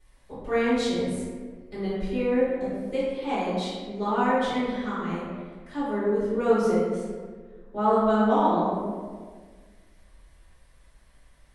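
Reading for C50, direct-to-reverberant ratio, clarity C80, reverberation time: −2.0 dB, −13.5 dB, 0.5 dB, 1.6 s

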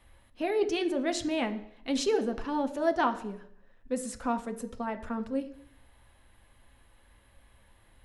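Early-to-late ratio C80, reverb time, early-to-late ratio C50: 16.0 dB, 0.70 s, 13.5 dB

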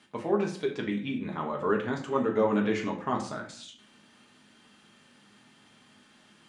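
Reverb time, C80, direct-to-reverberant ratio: 0.55 s, 12.5 dB, −1.0 dB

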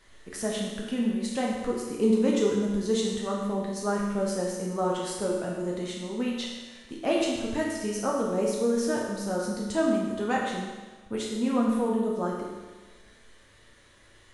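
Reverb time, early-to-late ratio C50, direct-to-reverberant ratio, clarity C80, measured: 1.3 s, 0.5 dB, −3.5 dB, 3.0 dB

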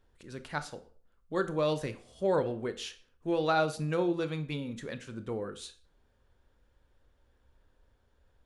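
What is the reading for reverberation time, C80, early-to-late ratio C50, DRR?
0.45 s, 19.5 dB, 15.0 dB, 10.5 dB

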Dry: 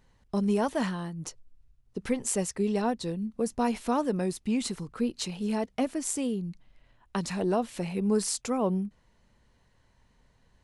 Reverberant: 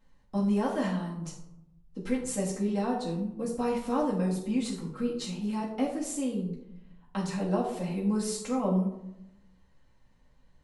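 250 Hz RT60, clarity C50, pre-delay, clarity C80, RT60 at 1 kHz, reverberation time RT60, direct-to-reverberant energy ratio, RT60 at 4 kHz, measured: 1.1 s, 6.0 dB, 4 ms, 8.5 dB, 0.80 s, 0.85 s, −6.5 dB, 0.40 s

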